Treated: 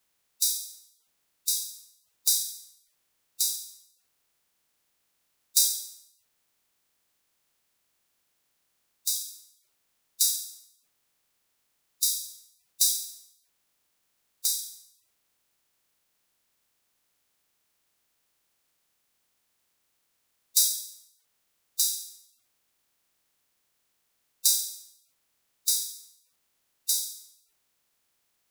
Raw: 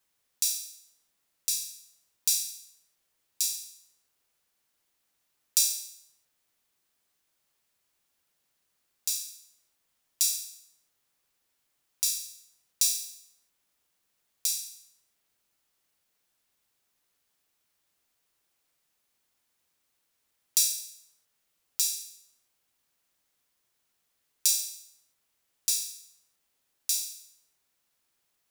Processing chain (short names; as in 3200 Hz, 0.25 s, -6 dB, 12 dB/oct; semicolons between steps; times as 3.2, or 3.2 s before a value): bin magnitudes rounded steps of 30 dB; gain +2.5 dB